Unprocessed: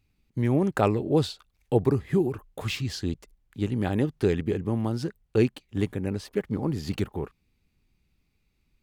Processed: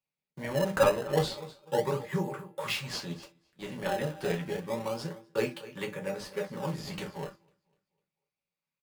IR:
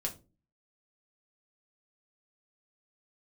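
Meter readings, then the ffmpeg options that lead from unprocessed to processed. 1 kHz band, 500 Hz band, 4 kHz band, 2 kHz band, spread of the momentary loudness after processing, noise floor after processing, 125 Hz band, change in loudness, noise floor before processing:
−0.5 dB, −3.0 dB, 0.0 dB, +1.5 dB, 14 LU, below −85 dBFS, −10.0 dB, −5.0 dB, −72 dBFS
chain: -filter_complex "[0:a]asuperstop=centerf=690:order=20:qfactor=4.1,lowshelf=frequency=480:width_type=q:width=3:gain=-9,asplit=2[link_01][link_02];[link_02]aecho=0:1:250|500|750|1000:0.141|0.0622|0.0273|0.012[link_03];[link_01][link_03]amix=inputs=2:normalize=0,agate=range=-14dB:threshold=-48dB:ratio=16:detection=peak,highpass=frequency=150:width=0.5412,highpass=frequency=150:width=1.3066,equalizer=frequency=230:width=7.8:gain=-5.5,bandreject=frequency=336.3:width_type=h:width=4,bandreject=frequency=672.6:width_type=h:width=4,bandreject=frequency=1008.9:width_type=h:width=4,bandreject=frequency=1345.2:width_type=h:width=4,bandreject=frequency=1681.5:width_type=h:width=4,bandreject=frequency=2017.8:width_type=h:width=4,bandreject=frequency=2354.1:width_type=h:width=4,bandreject=frequency=2690.4:width_type=h:width=4,bandreject=frequency=3026.7:width_type=h:width=4,bandreject=frequency=3363:width_type=h:width=4,bandreject=frequency=3699.3:width_type=h:width=4,bandreject=frequency=4035.6:width_type=h:width=4,bandreject=frequency=4371.9:width_type=h:width=4,bandreject=frequency=4708.2:width_type=h:width=4,bandreject=frequency=5044.5:width_type=h:width=4,bandreject=frequency=5380.8:width_type=h:width=4[link_04];[1:a]atrim=start_sample=2205,atrim=end_sample=3528[link_05];[link_04][link_05]afir=irnorm=-1:irlink=0,asplit=2[link_06][link_07];[link_07]acrusher=samples=22:mix=1:aa=0.000001:lfo=1:lforange=35.2:lforate=0.3,volume=-6dB[link_08];[link_06][link_08]amix=inputs=2:normalize=0,volume=-3dB"

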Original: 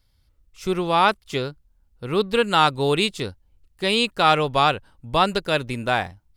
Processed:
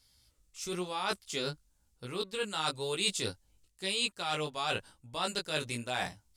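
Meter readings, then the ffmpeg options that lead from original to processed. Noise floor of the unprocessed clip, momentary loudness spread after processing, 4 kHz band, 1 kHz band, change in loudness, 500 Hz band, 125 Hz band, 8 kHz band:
−64 dBFS, 11 LU, −8.5 dB, −17.0 dB, −13.0 dB, −14.5 dB, −14.0 dB, +0.5 dB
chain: -af "areverse,acompressor=threshold=-29dB:ratio=12,areverse,lowshelf=frequency=63:gain=-10,flanger=delay=15.5:depth=4:speed=1,equalizer=frequency=7800:width=0.55:gain=15"

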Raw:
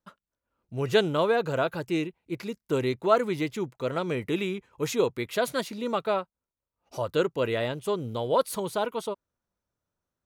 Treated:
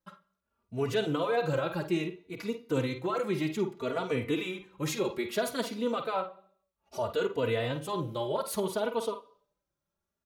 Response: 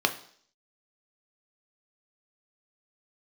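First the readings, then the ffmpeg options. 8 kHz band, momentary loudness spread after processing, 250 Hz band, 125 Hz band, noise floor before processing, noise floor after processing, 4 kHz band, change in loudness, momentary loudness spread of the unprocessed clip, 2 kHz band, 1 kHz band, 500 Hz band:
−1.5 dB, 8 LU, −2.0 dB, −2.0 dB, below −85 dBFS, below −85 dBFS, −3.5 dB, −4.0 dB, 11 LU, −4.0 dB, −4.5 dB, −4.0 dB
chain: -filter_complex "[0:a]alimiter=limit=-20dB:level=0:latency=1:release=27,asplit=2[link_01][link_02];[1:a]atrim=start_sample=2205,adelay=49[link_03];[link_02][link_03]afir=irnorm=-1:irlink=0,volume=-19.5dB[link_04];[link_01][link_04]amix=inputs=2:normalize=0,asplit=2[link_05][link_06];[link_06]adelay=3.3,afreqshift=0.62[link_07];[link_05][link_07]amix=inputs=2:normalize=1,volume=1.5dB"

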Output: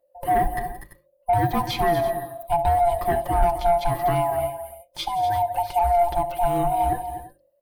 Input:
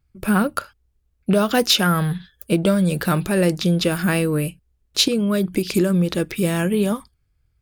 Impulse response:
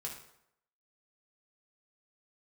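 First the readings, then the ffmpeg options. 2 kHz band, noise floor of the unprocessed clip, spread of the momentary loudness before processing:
−8.5 dB, −67 dBFS, 9 LU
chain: -filter_complex "[0:a]afftfilt=real='real(if(lt(b,1008),b+24*(1-2*mod(floor(b/24),2)),b),0)':imag='imag(if(lt(b,1008),b+24*(1-2*mod(floor(b/24),2)),b),0)':win_size=2048:overlap=0.75,tiltshelf=frequency=710:gain=9.5,aecho=1:1:5.7:0.65,asplit=2[link_01][link_02];[link_02]aecho=0:1:66|175|244|338:0.112|0.112|0.237|0.119[link_03];[link_01][link_03]amix=inputs=2:normalize=0,acrossover=split=5300[link_04][link_05];[link_05]acompressor=threshold=-49dB:ratio=4:attack=1:release=60[link_06];[link_04][link_06]amix=inputs=2:normalize=0,equalizer=frequency=200:width_type=o:width=0.33:gain=-9,equalizer=frequency=315:width_type=o:width=0.33:gain=6,equalizer=frequency=12500:width_type=o:width=0.33:gain=5,aexciter=amount=3.7:drive=6.5:freq=8700,asoftclip=type=tanh:threshold=-5dB,bandreject=frequency=50:width_type=h:width=6,bandreject=frequency=100:width_type=h:width=6,bandreject=frequency=150:width_type=h:width=6,bandreject=frequency=200:width_type=h:width=6,bandreject=frequency=250:width_type=h:width=6,bandreject=frequency=300:width_type=h:width=6,bandreject=frequency=350:width_type=h:width=6,volume=-5dB"

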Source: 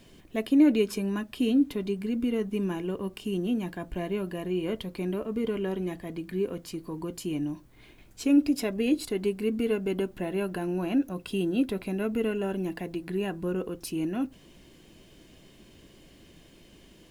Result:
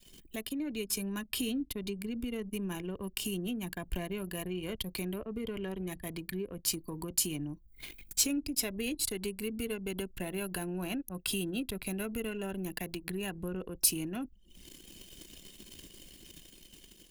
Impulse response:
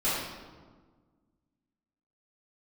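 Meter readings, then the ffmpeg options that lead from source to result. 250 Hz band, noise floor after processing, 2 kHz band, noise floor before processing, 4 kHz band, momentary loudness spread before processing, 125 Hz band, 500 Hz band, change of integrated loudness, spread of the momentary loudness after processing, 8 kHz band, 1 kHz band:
−10.0 dB, −59 dBFS, −2.0 dB, −55 dBFS, +3.5 dB, 11 LU, −5.0 dB, −9.5 dB, −6.0 dB, 19 LU, +11.5 dB, −6.0 dB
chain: -filter_complex "[0:a]acrossover=split=120[link_01][link_02];[link_02]acompressor=threshold=-46dB:ratio=2.5[link_03];[link_01][link_03]amix=inputs=2:normalize=0,crystalizer=i=6.5:c=0,adynamicequalizer=threshold=0.00251:dfrequency=290:dqfactor=2.4:tfrequency=290:tqfactor=2.4:attack=5:release=100:ratio=0.375:range=1.5:mode=cutabove:tftype=bell,anlmdn=0.0631,dynaudnorm=framelen=100:gausssize=17:maxgain=3.5dB"

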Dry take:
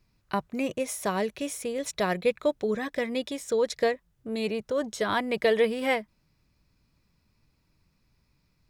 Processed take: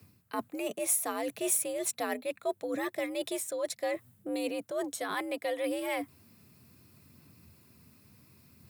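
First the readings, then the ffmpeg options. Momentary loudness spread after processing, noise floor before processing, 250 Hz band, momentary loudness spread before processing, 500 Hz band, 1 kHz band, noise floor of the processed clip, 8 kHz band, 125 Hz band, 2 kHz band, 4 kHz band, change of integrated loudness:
9 LU, −71 dBFS, −5.0 dB, 7 LU, −7.0 dB, −6.0 dB, −66 dBFS, +6.0 dB, −14.5 dB, −6.5 dB, −6.0 dB, −4.5 dB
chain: -af "areverse,acompressor=threshold=-41dB:ratio=5,areverse,afreqshift=73,aexciter=amount=2.5:drive=8.5:freq=8000,aphaser=in_gain=1:out_gain=1:delay=4.8:decay=0.22:speed=0.69:type=sinusoidal,volume=8dB"

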